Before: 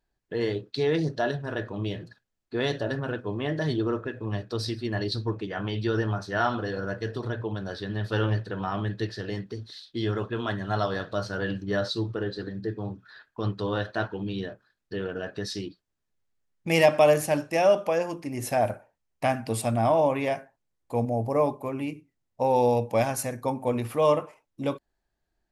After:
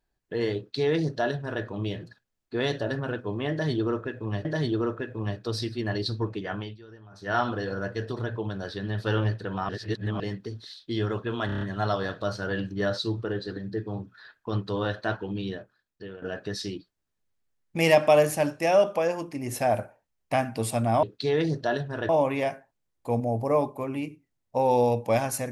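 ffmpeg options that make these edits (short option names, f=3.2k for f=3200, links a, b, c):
-filter_complex "[0:a]asplit=14[a][b][c][d][e][f][g][h][i][j][k][l][m][n];[a]atrim=end=4.452[o];[b]atrim=start=3.508:end=5.84,asetpts=PTS-STARTPTS,afade=t=out:st=2.062:d=0.27:silence=0.0794328[p];[c]atrim=start=5.84:end=6.16,asetpts=PTS-STARTPTS,volume=-22dB[q];[d]atrim=start=6.16:end=8.752,asetpts=PTS-STARTPTS,afade=t=in:d=0.27:silence=0.0794328[r];[e]atrim=start=8.748:end=9.262,asetpts=PTS-STARTPTS,areverse[s];[f]atrim=start=9.258:end=10.552[t];[g]atrim=start=10.518:end=10.552[u];[h]atrim=start=10.518:end=10.552[v];[i]atrim=start=10.518:end=10.552[w];[j]atrim=start=10.518:end=10.552[x];[k]atrim=start=10.518:end=15.13,asetpts=PTS-STARTPTS,afade=t=out:st=3.812:d=0.8:silence=0.237137[y];[l]atrim=start=15.13:end=19.942,asetpts=PTS-STARTPTS,afade=t=in:d=0.004:c=hsin:silence=0.237137[z];[m]atrim=start=0.568:end=1.632[aa];[n]atrim=start=19.938[ab];[p][q][r]concat=n=3:v=0:a=1[ac];[o][ac]acrossfade=d=0.004:c1=hsin:c2=hsin[ad];[ad][s]acrossfade=d=0.004:c1=hsin:c2=hsin[ae];[ae][t]acrossfade=d=0.004:c1=hsin:c2=hsin[af];[af][u]acrossfade=d=0.004:c1=hsin:c2=hsin[ag];[ag][v]acrossfade=d=0.004:c1=hsin:c2=hsin[ah];[ah][w]acrossfade=d=0.004:c1=hsin:c2=hsin[ai];[ai][x]acrossfade=d=0.004:c1=hsin:c2=hsin[aj];[y][z]concat=n=2:v=0:a=1[ak];[aj][ak]acrossfade=d=0.004:c1=hsin:c2=hsin[al];[al][aa]acrossfade=d=0.004:c1=hsin:c2=hsin[am];[am][ab]acrossfade=d=0.004:c1=hsin:c2=hsin"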